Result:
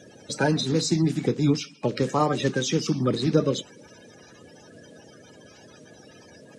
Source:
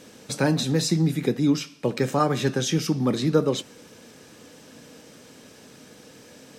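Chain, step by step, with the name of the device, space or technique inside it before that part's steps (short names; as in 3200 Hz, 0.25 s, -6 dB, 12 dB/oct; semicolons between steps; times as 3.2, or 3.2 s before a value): clip after many re-uploads (LPF 8600 Hz 24 dB/oct; bin magnitudes rounded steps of 30 dB)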